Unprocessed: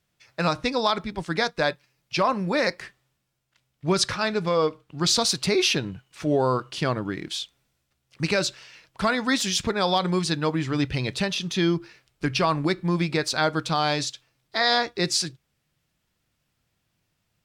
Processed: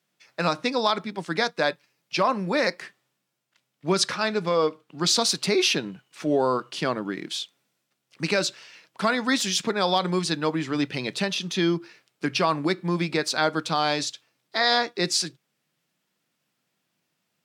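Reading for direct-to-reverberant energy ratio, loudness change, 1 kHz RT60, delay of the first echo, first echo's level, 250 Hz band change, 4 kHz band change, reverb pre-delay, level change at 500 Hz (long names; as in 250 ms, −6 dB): no reverb audible, −0.5 dB, no reverb audible, no echo audible, no echo audible, −1.0 dB, 0.0 dB, no reverb audible, 0.0 dB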